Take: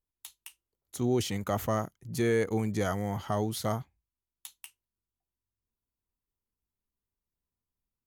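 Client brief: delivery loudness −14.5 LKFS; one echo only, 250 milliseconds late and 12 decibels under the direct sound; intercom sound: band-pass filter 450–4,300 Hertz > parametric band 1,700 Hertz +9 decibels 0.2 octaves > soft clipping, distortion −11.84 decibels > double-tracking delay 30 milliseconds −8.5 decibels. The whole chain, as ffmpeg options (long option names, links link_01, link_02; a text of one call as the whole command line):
ffmpeg -i in.wav -filter_complex "[0:a]highpass=450,lowpass=4300,equalizer=frequency=1700:width_type=o:width=0.2:gain=9,aecho=1:1:250:0.251,asoftclip=threshold=-28dB,asplit=2[link_01][link_02];[link_02]adelay=30,volume=-8.5dB[link_03];[link_01][link_03]amix=inputs=2:normalize=0,volume=22dB" out.wav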